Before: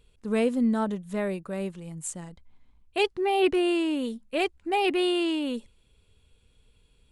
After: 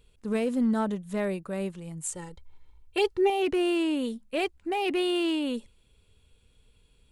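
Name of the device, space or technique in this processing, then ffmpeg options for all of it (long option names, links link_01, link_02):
limiter into clipper: -filter_complex "[0:a]highshelf=frequency=9900:gain=2.5,alimiter=limit=-19dB:level=0:latency=1:release=16,asoftclip=type=hard:threshold=-20dB,asettb=1/sr,asplit=3[link_01][link_02][link_03];[link_01]atrim=end=2.124[link_04];[link_02]atrim=start=2.12:end=3.3,asetpts=PTS-STARTPTS,afade=type=in:duration=0.004:curve=qsin,afade=type=out:start_time=1.176:duration=0.004:curve=qsin,aecho=1:1:2.2:0.93,atrim=end_sample=52038[link_05];[link_03]atrim=start=3.296[link_06];[link_04][link_05]acrossfade=duration=0.004:curve1=hsin:curve2=qsin[link_07];[link_07][link_06]acrossfade=duration=0.004:curve1=qsin:curve2=hsin"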